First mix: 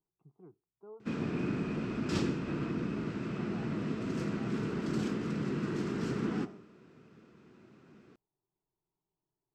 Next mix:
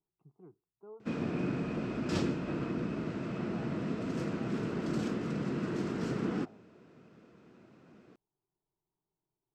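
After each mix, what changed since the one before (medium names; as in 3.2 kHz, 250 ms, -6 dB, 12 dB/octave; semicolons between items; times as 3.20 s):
background: add peaking EQ 630 Hz +6.5 dB 0.73 oct; reverb: off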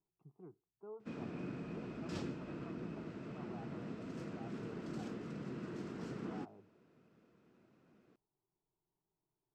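background -10.5 dB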